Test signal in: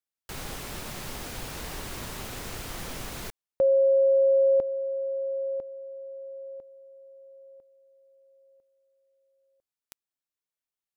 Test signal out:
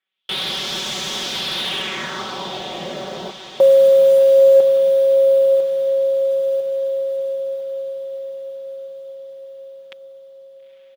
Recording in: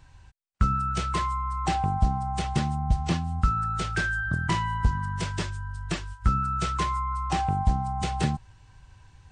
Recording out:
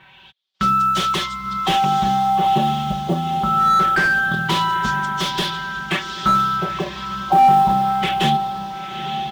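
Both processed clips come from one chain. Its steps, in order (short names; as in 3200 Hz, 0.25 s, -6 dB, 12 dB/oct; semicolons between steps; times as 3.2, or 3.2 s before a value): HPF 190 Hz 12 dB/oct; bell 3400 Hz +14.5 dB 0.42 oct; comb 5.3 ms, depth 93%; in parallel at +1 dB: limiter -19 dBFS; on the sum: LFO low-pass sine 0.25 Hz 620–6400 Hz; short-mantissa float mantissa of 4-bit; diffused feedback echo 0.918 s, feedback 58%, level -11 dB; slew limiter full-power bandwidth 290 Hz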